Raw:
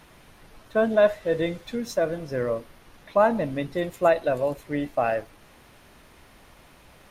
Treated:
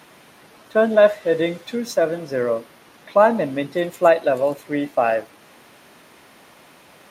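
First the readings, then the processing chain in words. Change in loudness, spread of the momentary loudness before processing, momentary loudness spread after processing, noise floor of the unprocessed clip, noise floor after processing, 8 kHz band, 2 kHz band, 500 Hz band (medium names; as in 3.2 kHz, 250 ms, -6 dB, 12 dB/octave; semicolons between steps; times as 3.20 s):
+5.5 dB, 9 LU, 9 LU, -53 dBFS, -50 dBFS, no reading, +5.5 dB, +5.5 dB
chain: high-pass 190 Hz 12 dB/octave; trim +5.5 dB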